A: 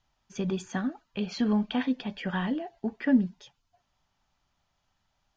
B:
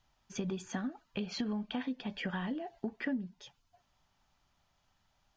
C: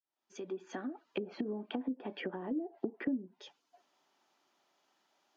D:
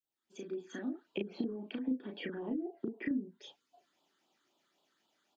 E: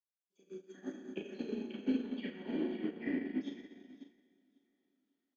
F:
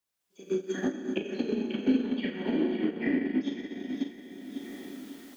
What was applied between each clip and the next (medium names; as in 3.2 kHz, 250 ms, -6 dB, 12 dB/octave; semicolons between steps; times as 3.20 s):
compression 5:1, threshold -35 dBFS, peak gain reduction 16.5 dB; trim +1 dB
fade-in on the opening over 1.17 s; ladder high-pass 290 Hz, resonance 50%; low-pass that closes with the level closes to 380 Hz, closed at -42 dBFS; trim +10.5 dB
phase shifter stages 8, 3.8 Hz, lowest notch 700–2000 Hz; doubling 35 ms -3 dB
on a send: feedback delay 545 ms, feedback 39%, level -8 dB; on the sum: plate-style reverb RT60 3.1 s, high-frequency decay 0.85×, DRR -3 dB; upward expansion 2.5:1, over -46 dBFS; trim +1 dB
recorder AGC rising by 26 dB/s; trim +8 dB